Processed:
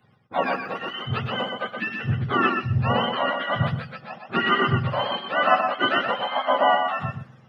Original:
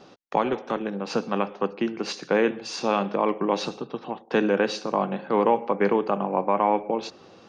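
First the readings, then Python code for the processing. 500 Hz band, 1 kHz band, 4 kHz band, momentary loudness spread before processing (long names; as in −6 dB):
−3.5 dB, +3.5 dB, +8.0 dB, 8 LU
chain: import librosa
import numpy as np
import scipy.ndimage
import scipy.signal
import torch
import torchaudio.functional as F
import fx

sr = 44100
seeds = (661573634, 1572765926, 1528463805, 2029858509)

y = fx.octave_mirror(x, sr, pivot_hz=780.0)
y = fx.echo_feedback(y, sr, ms=124, feedback_pct=16, wet_db=-4.0)
y = fx.band_widen(y, sr, depth_pct=40)
y = F.gain(torch.from_numpy(y), 2.0).numpy()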